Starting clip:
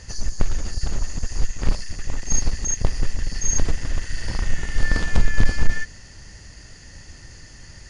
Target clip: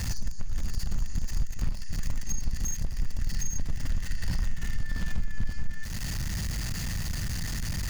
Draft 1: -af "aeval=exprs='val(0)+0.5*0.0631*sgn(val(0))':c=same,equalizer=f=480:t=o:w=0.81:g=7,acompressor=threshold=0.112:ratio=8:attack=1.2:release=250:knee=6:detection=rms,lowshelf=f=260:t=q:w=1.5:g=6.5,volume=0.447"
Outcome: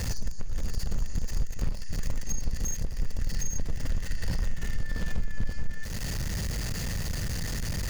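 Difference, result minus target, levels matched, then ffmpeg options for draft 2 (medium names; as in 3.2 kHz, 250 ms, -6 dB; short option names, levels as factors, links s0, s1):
500 Hz band +7.0 dB
-af "aeval=exprs='val(0)+0.5*0.0631*sgn(val(0))':c=same,equalizer=f=480:t=o:w=0.81:g=-3,acompressor=threshold=0.112:ratio=8:attack=1.2:release=250:knee=6:detection=rms,lowshelf=f=260:t=q:w=1.5:g=6.5,volume=0.447"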